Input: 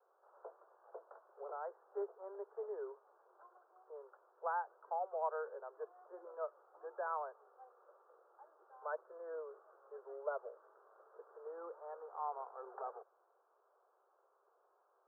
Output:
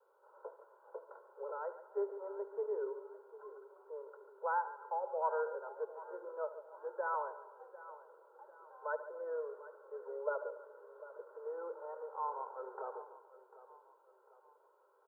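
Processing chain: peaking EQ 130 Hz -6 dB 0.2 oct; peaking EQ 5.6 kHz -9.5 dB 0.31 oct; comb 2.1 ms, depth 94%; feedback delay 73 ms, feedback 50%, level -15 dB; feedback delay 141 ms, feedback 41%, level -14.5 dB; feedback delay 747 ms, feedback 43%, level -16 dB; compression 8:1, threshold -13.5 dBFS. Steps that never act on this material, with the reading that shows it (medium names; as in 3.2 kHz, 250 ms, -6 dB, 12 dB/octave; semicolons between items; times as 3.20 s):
peaking EQ 130 Hz: input has nothing below 320 Hz; peaking EQ 5.6 kHz: input has nothing above 1.7 kHz; compression, threshold -13.5 dBFS: peak at its input -23.0 dBFS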